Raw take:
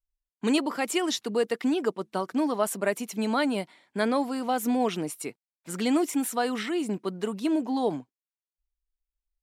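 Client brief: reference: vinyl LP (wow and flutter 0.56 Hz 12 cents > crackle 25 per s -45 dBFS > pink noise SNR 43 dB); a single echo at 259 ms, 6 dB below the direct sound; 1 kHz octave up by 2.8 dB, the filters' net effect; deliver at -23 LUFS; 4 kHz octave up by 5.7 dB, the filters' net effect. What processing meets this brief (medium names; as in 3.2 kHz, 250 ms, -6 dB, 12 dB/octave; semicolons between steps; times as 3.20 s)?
peaking EQ 1 kHz +3.5 dB; peaking EQ 4 kHz +7 dB; delay 259 ms -6 dB; wow and flutter 0.56 Hz 12 cents; crackle 25 per s -45 dBFS; pink noise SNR 43 dB; trim +3 dB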